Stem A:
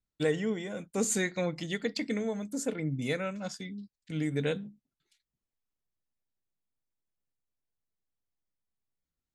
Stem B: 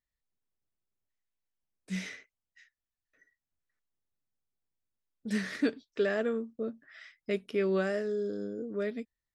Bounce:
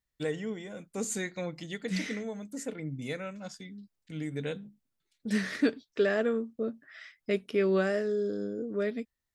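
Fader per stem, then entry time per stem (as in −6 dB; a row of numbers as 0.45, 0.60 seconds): −4.5, +2.5 decibels; 0.00, 0.00 seconds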